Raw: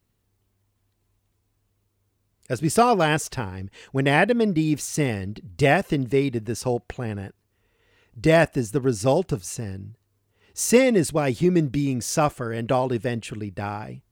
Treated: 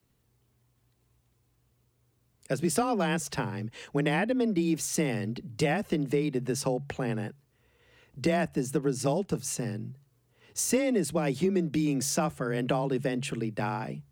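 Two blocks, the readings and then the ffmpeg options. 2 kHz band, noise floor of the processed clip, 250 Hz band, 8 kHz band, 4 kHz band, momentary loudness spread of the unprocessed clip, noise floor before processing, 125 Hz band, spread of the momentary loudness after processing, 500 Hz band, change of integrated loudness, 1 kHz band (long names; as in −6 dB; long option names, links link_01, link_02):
−8.5 dB, −71 dBFS, −5.0 dB, −3.0 dB, −5.5 dB, 14 LU, −72 dBFS, −6.5 dB, 7 LU, −7.5 dB, −6.5 dB, −8.5 dB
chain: -filter_complex "[0:a]bandreject=frequency=60:width_type=h:width=6,bandreject=frequency=120:width_type=h:width=6,afreqshift=21,acrossover=split=110|260[link_01][link_02][link_03];[link_01]acompressor=threshold=-53dB:ratio=4[link_04];[link_02]acompressor=threshold=-32dB:ratio=4[link_05];[link_03]acompressor=threshold=-29dB:ratio=4[link_06];[link_04][link_05][link_06]amix=inputs=3:normalize=0,volume=1dB"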